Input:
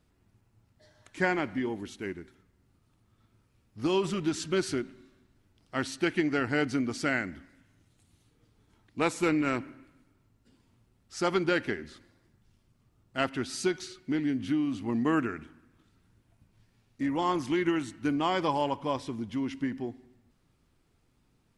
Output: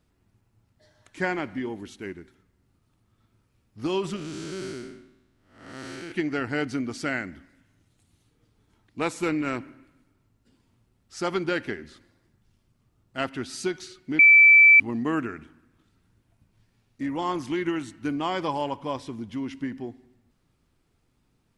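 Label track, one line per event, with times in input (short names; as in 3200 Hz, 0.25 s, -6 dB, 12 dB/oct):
4.160000	6.120000	time blur width 0.291 s
14.190000	14.800000	bleep 2320 Hz -10 dBFS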